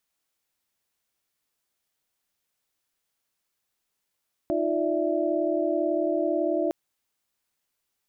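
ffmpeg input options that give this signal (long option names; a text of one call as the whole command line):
ffmpeg -f lavfi -i "aevalsrc='0.0398*(sin(2*PI*311.13*t)+sin(2*PI*349.23*t)+sin(2*PI*587.33*t)+sin(2*PI*659.26*t))':duration=2.21:sample_rate=44100" out.wav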